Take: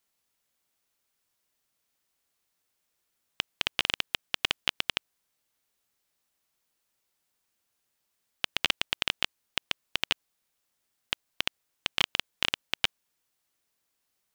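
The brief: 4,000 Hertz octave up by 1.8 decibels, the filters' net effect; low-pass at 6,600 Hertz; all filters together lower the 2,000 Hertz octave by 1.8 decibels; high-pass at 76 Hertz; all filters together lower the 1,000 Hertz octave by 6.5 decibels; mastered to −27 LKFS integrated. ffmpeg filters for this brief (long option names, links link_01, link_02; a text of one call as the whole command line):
ffmpeg -i in.wav -af "highpass=76,lowpass=6600,equalizer=frequency=1000:width_type=o:gain=-8,equalizer=frequency=2000:width_type=o:gain=-3,equalizer=frequency=4000:width_type=o:gain=5,volume=3dB" out.wav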